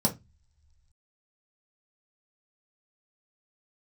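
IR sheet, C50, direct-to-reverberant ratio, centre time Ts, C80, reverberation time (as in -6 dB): 15.0 dB, -1.0 dB, 11 ms, 24.0 dB, not exponential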